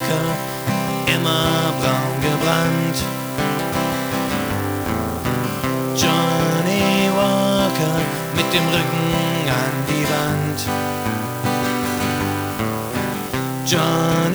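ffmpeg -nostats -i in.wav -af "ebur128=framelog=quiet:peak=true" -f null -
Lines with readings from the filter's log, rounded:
Integrated loudness:
  I:         -19.4 LUFS
  Threshold: -29.4 LUFS
Loudness range:
  LRA:         3.6 LU
  Threshold: -39.3 LUFS
  LRA low:   -21.3 LUFS
  LRA high:  -17.7 LUFS
True peak:
  Peak:       -1.3 dBFS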